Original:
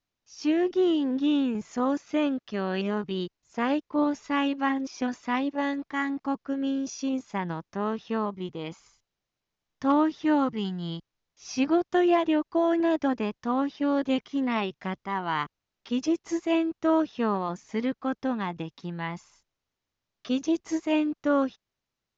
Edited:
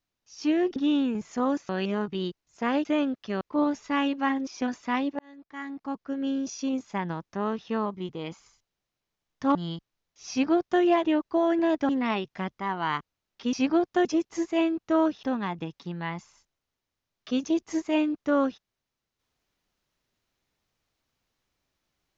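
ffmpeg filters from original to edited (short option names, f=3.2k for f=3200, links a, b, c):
-filter_complex "[0:a]asplit=11[a][b][c][d][e][f][g][h][i][j][k];[a]atrim=end=0.762[l];[b]atrim=start=1.158:end=2.092[m];[c]atrim=start=2.648:end=3.812[n];[d]atrim=start=2.088:end=2.652[o];[e]atrim=start=3.808:end=5.59,asetpts=PTS-STARTPTS,afade=t=out:st=1.778:d=0.004:c=hsin[p];[f]atrim=start=5.59:end=9.952,asetpts=PTS-STARTPTS,afade=t=in:d=1.17[q];[g]atrim=start=10.758:end=13.102[r];[h]atrim=start=14.348:end=15.992[s];[i]atrim=start=11.508:end=12.032[t];[j]atrim=start=15.988:end=17.172[u];[k]atrim=start=18.208[v];[l][m]acrossfade=d=0.004:c1=hsin:c2=hsin[w];[w][n]acrossfade=d=0.004:c1=hsin:c2=hsin[x];[x][o]acrossfade=d=0.004:c1=hsin:c2=hsin[y];[p][q]concat=n=2:v=0:a=1[z];[y][z]acrossfade=d=0.004:c1=hsin:c2=hsin[aa];[aa][r]acrossfade=d=0.004:c1=hsin:c2=hsin[ab];[ab][s]acrossfade=d=0.004:c1=hsin:c2=hsin[ac];[ac][t]acrossfade=d=0.004:c1=hsin:c2=hsin[ad];[ad][u]acrossfade=d=0.004:c1=hsin:c2=hsin[ae];[ae][v]acrossfade=d=0.004:c1=hsin:c2=hsin"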